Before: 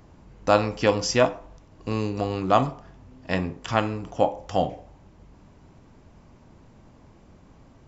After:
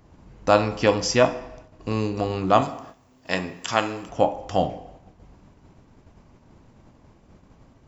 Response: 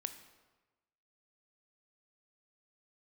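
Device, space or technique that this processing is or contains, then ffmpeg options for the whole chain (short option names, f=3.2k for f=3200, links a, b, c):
keyed gated reverb: -filter_complex "[0:a]asettb=1/sr,asplit=3[a][b][c];[a]atrim=end=2.614[d];[b]atrim=start=2.61:end=4.09,asetpts=PTS-STARTPTS,afade=t=in:d=0.004:c=qsin,afade=t=out:st=1.476:d=0.004:c=qsin,aemphasis=mode=production:type=bsi[e];[c]atrim=start=4.086[f];[d][e]acrossfade=d=0.004:c1=hsin:c2=qsin[g];[g][f]acrossfade=d=0.004:c1=qsin:c2=hsin,asplit=3[h][i][j];[1:a]atrim=start_sample=2205[k];[i][k]afir=irnorm=-1:irlink=0[l];[j]apad=whole_len=347101[m];[l][m]sidechaingate=range=-15dB:threshold=-50dB:ratio=16:detection=peak,volume=4dB[n];[h][n]amix=inputs=2:normalize=0,volume=-5.5dB"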